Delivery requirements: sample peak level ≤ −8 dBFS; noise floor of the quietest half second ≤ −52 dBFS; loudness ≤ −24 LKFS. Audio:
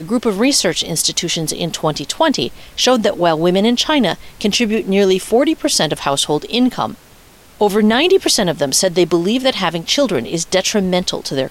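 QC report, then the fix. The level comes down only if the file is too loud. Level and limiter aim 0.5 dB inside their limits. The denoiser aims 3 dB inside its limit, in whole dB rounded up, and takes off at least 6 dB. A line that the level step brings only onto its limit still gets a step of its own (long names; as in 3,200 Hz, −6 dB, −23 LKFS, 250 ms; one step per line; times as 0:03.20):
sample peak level −3.5 dBFS: out of spec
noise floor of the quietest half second −44 dBFS: out of spec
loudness −15.5 LKFS: out of spec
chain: level −9 dB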